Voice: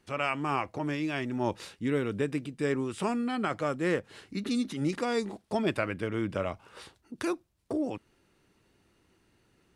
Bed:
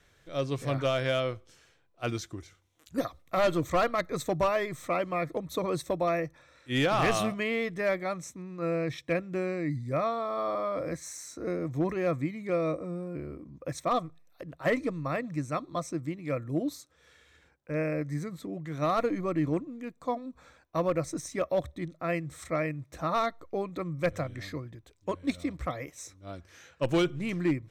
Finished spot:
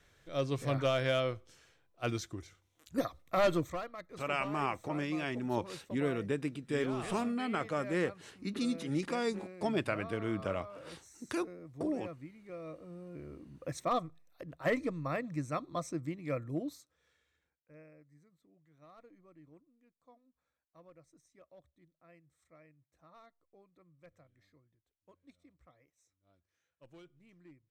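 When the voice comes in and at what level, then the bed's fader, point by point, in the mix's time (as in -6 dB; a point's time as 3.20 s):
4.10 s, -4.0 dB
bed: 3.57 s -2.5 dB
3.85 s -17 dB
12.58 s -17 dB
13.56 s -4 dB
16.42 s -4 dB
18.10 s -30.5 dB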